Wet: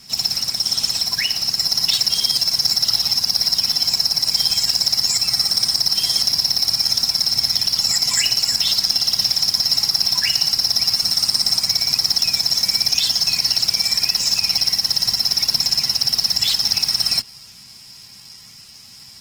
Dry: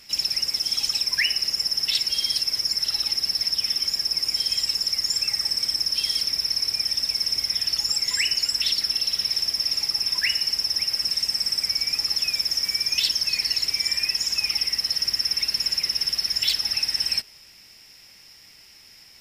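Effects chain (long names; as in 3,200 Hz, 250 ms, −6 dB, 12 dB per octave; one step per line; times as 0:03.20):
octave-band graphic EQ 125/250/500/1,000/2,000/4,000/8,000 Hz +11/+8/−10/+7/−4/+5/+11 dB
in parallel at −12 dB: sample-rate reduction 9,500 Hz, jitter 0%
on the sum: notch comb filter 300 Hz
boost into a limiter +7 dB
level −5.5 dB
Opus 16 kbit/s 48,000 Hz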